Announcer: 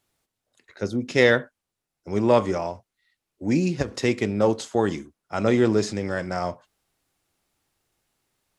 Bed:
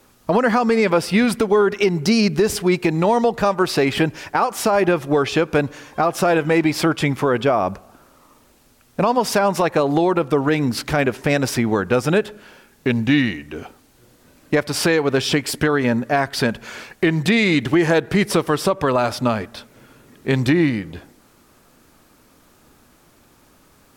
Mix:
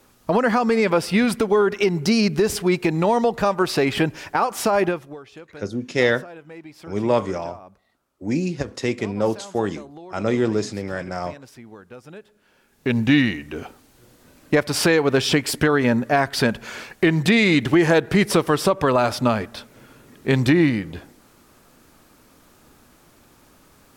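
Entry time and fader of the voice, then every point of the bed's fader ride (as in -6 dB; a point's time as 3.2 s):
4.80 s, -1.0 dB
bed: 4.84 s -2 dB
5.21 s -23.5 dB
12.26 s -23.5 dB
12.97 s 0 dB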